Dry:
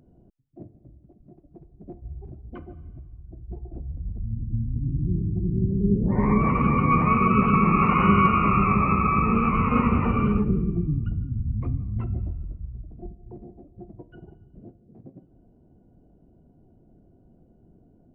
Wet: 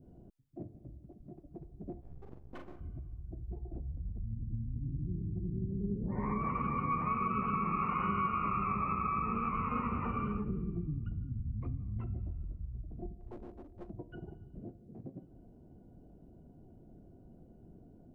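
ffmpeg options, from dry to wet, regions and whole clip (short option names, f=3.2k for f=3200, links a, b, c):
-filter_complex "[0:a]asettb=1/sr,asplit=3[a][b][c];[a]atrim=end=2.014[d];[b]atrim=start=2.01:end=2.81,asetpts=PTS-STARTPTS,afade=t=in:d=0.004:c=qsin,afade=t=out:st=0.796:d=0.004:c=qsin,lowshelf=f=210:g=-11.5,aeval=exprs='max(val(0),0)':c=same,asplit=2[e][f];[f]adelay=41,volume=-5dB[g];[e][g]amix=inputs=2:normalize=0,atrim=end_sample=35280[h];[c]atrim=start=2.806[i];[d][h]acrossfade=d=0.004:c1=hsin:c2=qsin[j];[j][i]acrossfade=d=0.004:c1=qsin:c2=hsin,asettb=1/sr,asplit=3[k][l][m];[k]atrim=end=13.204[n];[l]atrim=start=13.2:end=13.9,asetpts=PTS-STARTPTS,afade=t=in:d=0.004:c=qsin,afade=t=out:st=0.696:d=0.004:c=qsin,aeval=exprs='clip(val(0),-1,0.00398)':c=same,equalizer=f=150:t=o:w=0.74:g=-11[o];[m]atrim=start=13.896[p];[n][o]acrossfade=d=0.004:c1=hsin:c2=qsin[q];[q][p]acrossfade=d=0.004:c1=qsin:c2=hsin,adynamicequalizer=threshold=0.0158:dfrequency=1200:dqfactor=1.4:tfrequency=1200:tqfactor=1.4:attack=5:release=100:ratio=0.375:range=3:mode=boostabove:tftype=bell,acompressor=threshold=-40dB:ratio=2.5"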